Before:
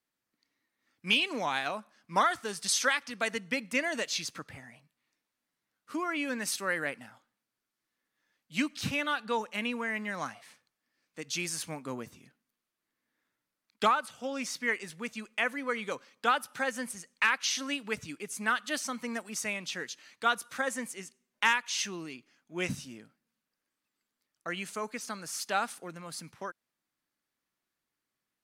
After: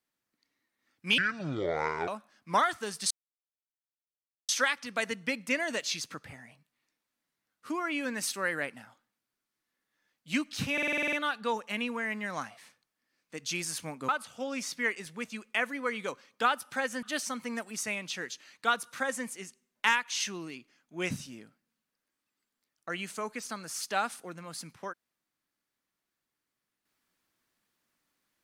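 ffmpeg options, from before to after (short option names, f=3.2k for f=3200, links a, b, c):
-filter_complex "[0:a]asplit=14[a][b][c][d][e][f][g][h][i][j][k][l][m][n];[a]atrim=end=1.184[o];[b]atrim=start=1.18:end=1.7,asetpts=PTS-STARTPTS,asetrate=25578,aresample=44100[p];[c]atrim=start=1.696:end=2.73,asetpts=PTS-STARTPTS,afade=t=out:st=1.03:d=0.004:c=hsin,apad=pad_dur=1.38[q];[d]atrim=start=2.73:end=9.022,asetpts=PTS-STARTPTS,afade=t=in:d=0.004:c=hsin[r];[e]atrim=start=8.968:end=9.022[s];[f]atrim=start=8.968:end=9.022[t];[g]atrim=start=8.968:end=9.022[u];[h]atrim=start=8.968:end=9.022[v];[i]atrim=start=8.968:end=9.022[w];[j]atrim=start=8.968:end=9.022[x];[k]atrim=start=8.968:end=9.022[y];[l]atrim=start=8.968:end=11.932[z];[m]atrim=start=13.918:end=16.862[aa];[n]atrim=start=18.608[ab];[o][p]acrossfade=d=0.004:c1=hsin:c2=hsin[ac];[q][r]concat=n=2:v=0:a=1[ad];[ac][ad]acrossfade=d=0.004:c1=hsin:c2=hsin[ae];[ae][s]acrossfade=d=0.004:c1=hsin:c2=hsin[af];[af][t]acrossfade=d=0.004:c1=hsin:c2=hsin[ag];[ag][u]acrossfade=d=0.004:c1=hsin:c2=hsin[ah];[ah][v]acrossfade=d=0.004:c1=hsin:c2=hsin[ai];[ai][w]acrossfade=d=0.004:c1=hsin:c2=hsin[aj];[aj][x]acrossfade=d=0.004:c1=hsin:c2=hsin[ak];[ak][y]acrossfade=d=0.004:c1=hsin:c2=hsin[al];[al][z]acrossfade=d=0.004:c1=hsin:c2=hsin[am];[am][aa]acrossfade=d=0.004:c1=hsin:c2=hsin[an];[an][ab]acrossfade=d=0.004:c1=hsin:c2=hsin"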